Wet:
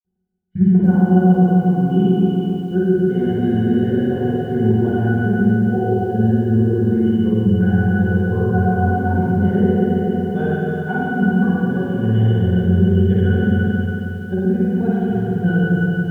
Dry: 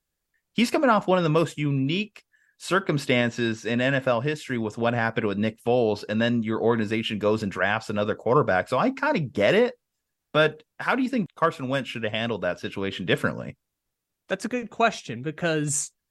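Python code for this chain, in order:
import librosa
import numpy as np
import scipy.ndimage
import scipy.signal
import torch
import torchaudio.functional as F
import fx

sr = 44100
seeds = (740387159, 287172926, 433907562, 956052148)

p1 = fx.tape_start_head(x, sr, length_s=0.76)
p2 = fx.quant_companded(p1, sr, bits=6)
p3 = fx.rotary_switch(p2, sr, hz=0.8, then_hz=5.5, switch_at_s=6.59)
p4 = fx.octave_resonator(p3, sr, note='F#', decay_s=0.17)
p5 = fx.rev_spring(p4, sr, rt60_s=3.1, pass_ms=(45, 54), chirp_ms=50, drr_db=-8.5)
p6 = fx.rider(p5, sr, range_db=4, speed_s=0.5)
p7 = fx.tilt_eq(p6, sr, slope=-3.5)
p8 = p7 + fx.echo_feedback(p7, sr, ms=175, feedback_pct=27, wet_db=-16.0, dry=0)
p9 = fx.echo_crushed(p8, sr, ms=282, feedback_pct=35, bits=9, wet_db=-10)
y = p9 * 10.0 ** (6.0 / 20.0)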